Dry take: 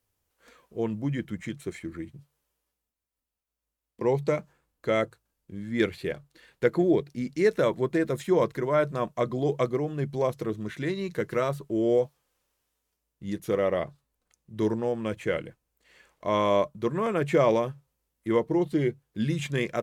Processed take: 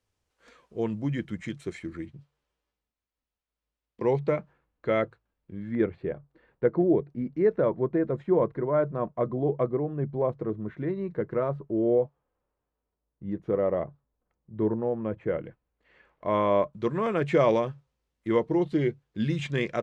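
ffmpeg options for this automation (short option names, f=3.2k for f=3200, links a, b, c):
-af "asetnsamples=n=441:p=0,asendcmd='2.06 lowpass f 4200;4.19 lowpass f 2500;5.75 lowpass f 1100;15.43 lowpass f 2100;16.73 lowpass f 5000',lowpass=6.9k"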